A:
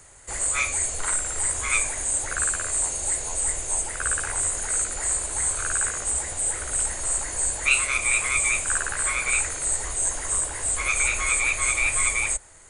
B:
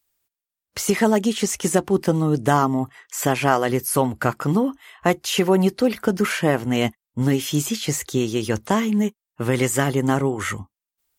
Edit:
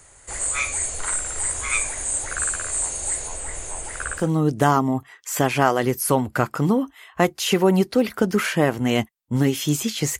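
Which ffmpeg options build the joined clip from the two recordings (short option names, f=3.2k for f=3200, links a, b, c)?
-filter_complex "[0:a]asettb=1/sr,asplit=3[a][b][c];[a]atrim=end=3.274[d];[b]atrim=start=3.27:end=4.3,asetpts=PTS-STARTPTS,afade=t=in:d=0.004:c=qsin,afade=t=out:st=1.026:d=0.004:c=qsin,acrossover=split=3300[e][f];[f]acompressor=threshold=-30dB:ratio=4:attack=1:release=60[g];[e][g]amix=inputs=2:normalize=0[h];[c]atrim=start=4.296[i];[d][h]acrossfade=d=0.004:c1=hsin:c2=qsin[j];[j][i]acrossfade=d=0.004:c1=qsin:c2=hsin,apad=whole_dur=10.19,atrim=end=10.19,atrim=end=4.3,asetpts=PTS-STARTPTS[k];[1:a]atrim=start=1.98:end=8.05,asetpts=PTS-STARTPTS[l];[k][l]acrossfade=d=0.18:c1=tri:c2=tri"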